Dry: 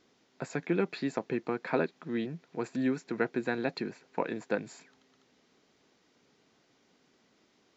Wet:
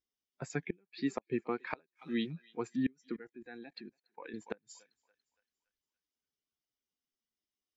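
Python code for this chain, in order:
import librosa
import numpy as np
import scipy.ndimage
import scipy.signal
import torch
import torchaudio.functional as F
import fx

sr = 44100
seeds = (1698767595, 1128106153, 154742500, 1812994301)

y = fx.bin_expand(x, sr, power=1.5)
y = fx.peak_eq(y, sr, hz=6300.0, db=12.0, octaves=1.9, at=(1.7, 2.31))
y = fx.echo_thinned(y, sr, ms=284, feedback_pct=54, hz=770.0, wet_db=-20.0)
y = fx.level_steps(y, sr, step_db=24, at=(3.16, 4.34))
y = fx.gate_flip(y, sr, shuts_db=-22.0, range_db=-31)
y = fx.noise_reduce_blind(y, sr, reduce_db=12)
y = y * 10.0 ** (1.5 / 20.0)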